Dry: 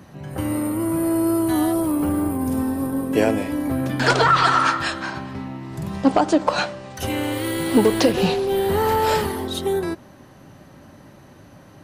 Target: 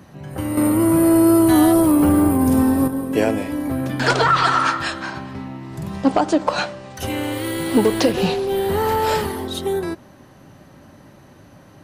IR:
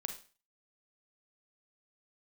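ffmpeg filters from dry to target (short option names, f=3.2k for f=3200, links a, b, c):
-filter_complex "[0:a]asettb=1/sr,asplit=3[a][b][c];[a]atrim=end=0.574[d];[b]atrim=start=0.57:end=2.88,asetpts=PTS-STARTPTS,afade=t=in:d=0.004:c=qsin,afade=t=out:st=2.306:d=0.004:c=qsin,acontrast=86[e];[c]atrim=start=2.876[f];[d][e]acrossfade=d=0.004:c1=hsin:c2=qsin[g];[g][f]acrossfade=d=0.004:c1=qsin:c2=hsin"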